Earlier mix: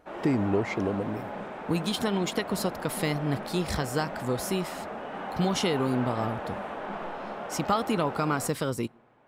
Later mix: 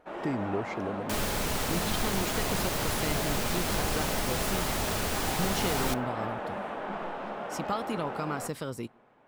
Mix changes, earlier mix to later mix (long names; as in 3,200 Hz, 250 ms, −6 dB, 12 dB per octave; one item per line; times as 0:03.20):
speech −6.5 dB
second sound: unmuted